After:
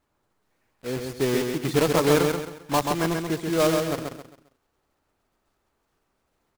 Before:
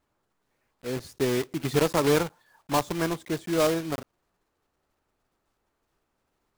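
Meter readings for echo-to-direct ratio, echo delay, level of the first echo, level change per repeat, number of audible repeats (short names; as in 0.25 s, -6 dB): -4.0 dB, 0.133 s, -4.5 dB, -9.5 dB, 4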